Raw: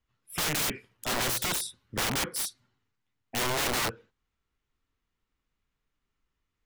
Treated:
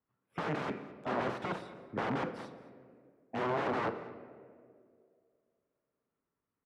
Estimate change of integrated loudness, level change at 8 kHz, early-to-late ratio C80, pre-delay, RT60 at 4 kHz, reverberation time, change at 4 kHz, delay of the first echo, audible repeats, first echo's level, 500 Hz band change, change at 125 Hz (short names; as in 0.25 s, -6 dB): -7.0 dB, under -30 dB, 12.0 dB, 4 ms, 1.0 s, 2.2 s, -19.0 dB, 0.215 s, 1, -20.0 dB, +0.5 dB, -4.0 dB